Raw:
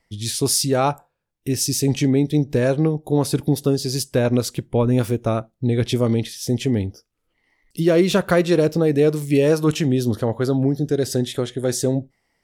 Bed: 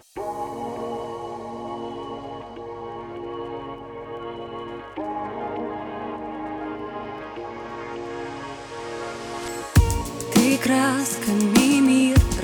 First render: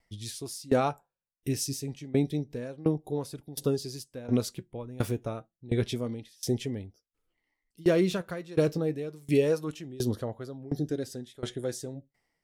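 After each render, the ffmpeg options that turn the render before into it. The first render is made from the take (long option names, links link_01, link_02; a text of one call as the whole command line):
ffmpeg -i in.wav -af "flanger=delay=1.3:depth=6:regen=71:speed=0.29:shape=triangular,aeval=exprs='val(0)*pow(10,-22*if(lt(mod(1.4*n/s,1),2*abs(1.4)/1000),1-mod(1.4*n/s,1)/(2*abs(1.4)/1000),(mod(1.4*n/s,1)-2*abs(1.4)/1000)/(1-2*abs(1.4)/1000))/20)':channel_layout=same" out.wav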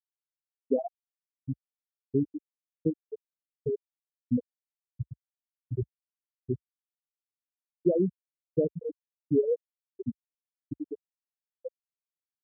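ffmpeg -i in.wav -af "afftfilt=real='re*gte(hypot(re,im),0.398)':imag='im*gte(hypot(re,im),0.398)':win_size=1024:overlap=0.75,equalizer=frequency=64:width=1.2:gain=4.5" out.wav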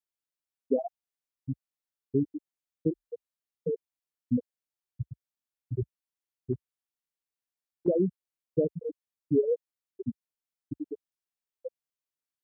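ffmpeg -i in.wav -filter_complex "[0:a]asplit=3[link_01][link_02][link_03];[link_01]afade=type=out:start_time=2.9:duration=0.02[link_04];[link_02]afreqshift=38,afade=type=in:start_time=2.9:duration=0.02,afade=type=out:start_time=3.74:duration=0.02[link_05];[link_03]afade=type=in:start_time=3.74:duration=0.02[link_06];[link_04][link_05][link_06]amix=inputs=3:normalize=0,asettb=1/sr,asplit=3[link_07][link_08][link_09];[link_07]atrim=end=6.534[link_10];[link_08]atrim=start=6.53:end=7.88,asetpts=PTS-STARTPTS,afade=type=in:duration=0.004:curve=qsin,afade=type=out:start_time=1.346:duration=0.004:curve=qsin,acompressor=threshold=-30dB:ratio=6:attack=3.2:release=140:knee=1:detection=peak[link_11];[link_09]atrim=start=7.876[link_12];[link_10][link_11]acrossfade=duration=0.004:curve1=hsin:curve2=qsin[link_13];[link_13][link_12]acrossfade=duration=0.004:curve1=qsin:curve2=hsin" out.wav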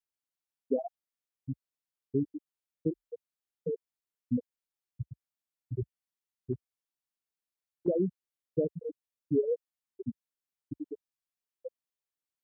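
ffmpeg -i in.wav -af "volume=-3dB" out.wav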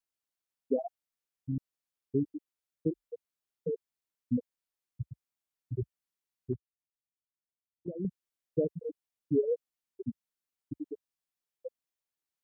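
ffmpeg -i in.wav -filter_complex "[0:a]asettb=1/sr,asplit=3[link_01][link_02][link_03];[link_01]atrim=end=6.544[link_04];[link_02]atrim=start=6.54:end=8.05,asetpts=PTS-STARTPTS,afade=type=in:duration=0.004:curve=qsin,afade=type=out:start_time=1.506:duration=0.004:curve=qsin,bandpass=frequency=100:width_type=q:width=1[link_05];[link_03]atrim=start=8.046[link_06];[link_04][link_05]acrossfade=duration=0.004:curve1=hsin:curve2=qsin[link_07];[link_07][link_06]acrossfade=duration=0.004:curve1=qsin:curve2=hsin,asplit=4[link_08][link_09][link_10][link_11];[link_08]atrim=end=1.522[link_12];[link_09]atrim=start=1.488:end=1.522[link_13];[link_10]atrim=start=1.488:end=1.522[link_14];[link_11]atrim=start=1.578[link_15];[link_12][link_13]acrossfade=duration=0.004:curve1=hsin:curve2=hsin[link_16];[link_16][link_14]acrossfade=duration=0.004:curve1=hsin:curve2=hsin[link_17];[link_17][link_15]acrossfade=duration=0.004:curve1=hsin:curve2=hsin" out.wav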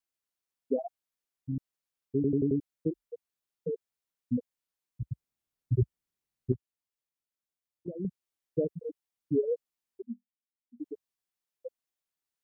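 ffmpeg -i in.wav -filter_complex "[0:a]asettb=1/sr,asplit=3[link_01][link_02][link_03];[link_01]atrim=end=5.024[link_04];[link_02]atrim=start=5.02:end=6.52,asetpts=PTS-STARTPTS,afade=type=in:duration=0.004:curve=qsin,afade=type=out:start_time=1.496:duration=0.004:curve=qsin,lowshelf=frequency=320:gain=11[link_05];[link_03]atrim=start=6.516[link_06];[link_04][link_05]acrossfade=duration=0.004:curve1=hsin:curve2=qsin[link_07];[link_07][link_06]acrossfade=duration=0.004:curve1=qsin:curve2=hsin,asettb=1/sr,asplit=3[link_08][link_09][link_10];[link_08]atrim=end=10.024[link_11];[link_09]atrim=start=10.02:end=10.8,asetpts=PTS-STARTPTS,afade=type=in:duration=0.004:curve=qsin,afade=type=out:start_time=0.776:duration=0.004:curve=qsin,asuperpass=centerf=220:order=8:qfactor=4.9[link_12];[link_10]atrim=start=10.796[link_13];[link_11][link_12]acrossfade=duration=0.004:curve1=hsin:curve2=qsin[link_14];[link_14][link_13]acrossfade=duration=0.004:curve1=qsin:curve2=hsin,asplit=6[link_15][link_16][link_17][link_18][link_19][link_20];[link_15]atrim=end=2.242[link_21];[link_16]atrim=start=2.148:end=2.242[link_22];[link_17]atrim=start=2.148:end=2.242[link_23];[link_18]atrim=start=2.148:end=2.242[link_24];[link_19]atrim=start=2.148:end=2.242[link_25];[link_20]atrim=start=2.598[link_26];[link_21][link_22]acrossfade=duration=0.004:curve1=hsin:curve2=hsin[link_27];[link_27][link_23]acrossfade=duration=0.004:curve1=hsin:curve2=hsin[link_28];[link_28][link_24]acrossfade=duration=0.004:curve1=hsin:curve2=hsin[link_29];[link_29][link_25]acrossfade=duration=0.004:curve1=hsin:curve2=hsin[link_30];[link_30][link_26]acrossfade=duration=0.004:curve1=hsin:curve2=hsin" out.wav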